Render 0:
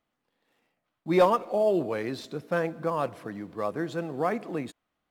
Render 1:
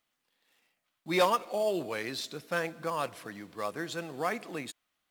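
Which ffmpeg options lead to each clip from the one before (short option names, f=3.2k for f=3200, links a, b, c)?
-af "tiltshelf=f=1.5k:g=-8"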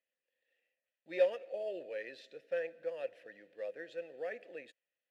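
-filter_complex "[0:a]asplit=3[a][b][c];[a]bandpass=f=530:t=q:w=8,volume=0dB[d];[b]bandpass=f=1.84k:t=q:w=8,volume=-6dB[e];[c]bandpass=f=2.48k:t=q:w=8,volume=-9dB[f];[d][e][f]amix=inputs=3:normalize=0,volume=1dB"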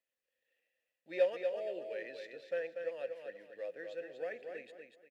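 -af "aecho=1:1:240|480|720|960:0.501|0.145|0.0421|0.0122,volume=-1dB"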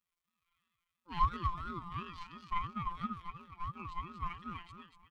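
-af "afftfilt=real='hypot(re,im)*cos(PI*b)':imag='0':win_size=1024:overlap=0.75,aeval=exprs='val(0)*sin(2*PI*630*n/s+630*0.2/2.9*sin(2*PI*2.9*n/s))':c=same,volume=6dB"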